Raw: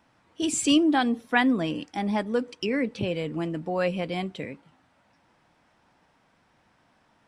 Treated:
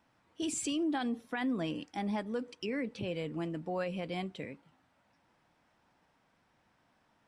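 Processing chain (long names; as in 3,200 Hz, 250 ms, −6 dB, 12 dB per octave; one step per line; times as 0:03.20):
brickwall limiter −19.5 dBFS, peak gain reduction 11.5 dB
level −7 dB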